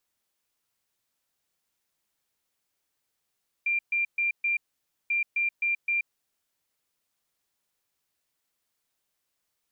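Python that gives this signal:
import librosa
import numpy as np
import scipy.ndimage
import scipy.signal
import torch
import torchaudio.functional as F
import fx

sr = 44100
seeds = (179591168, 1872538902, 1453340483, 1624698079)

y = fx.beep_pattern(sr, wave='sine', hz=2380.0, on_s=0.13, off_s=0.13, beeps=4, pause_s=0.53, groups=2, level_db=-23.0)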